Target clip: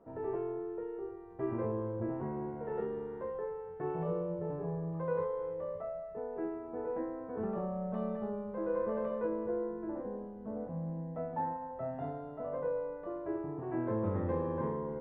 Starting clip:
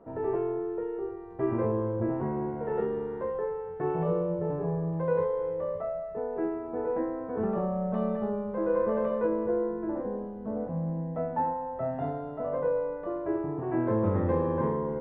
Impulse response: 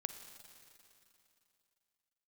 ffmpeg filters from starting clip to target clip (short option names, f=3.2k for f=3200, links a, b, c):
-filter_complex "[0:a]asettb=1/sr,asplit=3[a][b][c];[a]atrim=end=4.944[d];[b]atrim=start=4.94:end=5.54,asetpts=PTS-STARTPTS,afade=t=in:d=0.004:c=qsin,afade=t=out:st=0.596:d=0.004:c=qsin,equalizer=f=1.2k:w=5.5:g=9[e];[c]atrim=start=5.536[f];[d][e]acrossfade=d=0.004:c1=hsin:c2=qsin[g];[g][f]acrossfade=d=0.004:c1=qsin:c2=hsin,asettb=1/sr,asplit=3[h][i][j];[h]atrim=end=11.304[k];[i]atrim=start=11.3:end=11.71,asetpts=PTS-STARTPTS,afade=t=in:d=0.004:c=qsin,afade=t=out:st=0.406:d=0.004:c=qsin,asplit=2[l][m];[m]adelay=30,volume=-4dB[n];[l][n]amix=inputs=2:normalize=0,atrim=end_sample=18081[o];[j]atrim=start=11.706[p];[k][o]acrossfade=d=0.004:c1=hsin:c2=qsin[q];[q][p]acrossfade=d=0.004:c1=qsin:c2=hsin,volume=-7dB"